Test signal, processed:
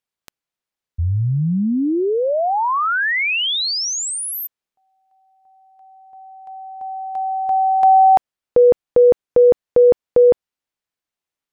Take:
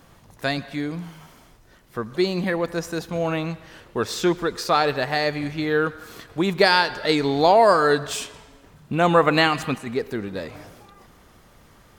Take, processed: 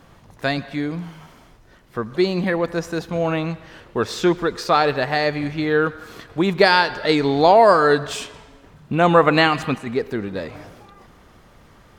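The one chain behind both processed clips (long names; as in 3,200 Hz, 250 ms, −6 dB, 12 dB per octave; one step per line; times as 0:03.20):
high-shelf EQ 6,400 Hz −9.5 dB
level +3 dB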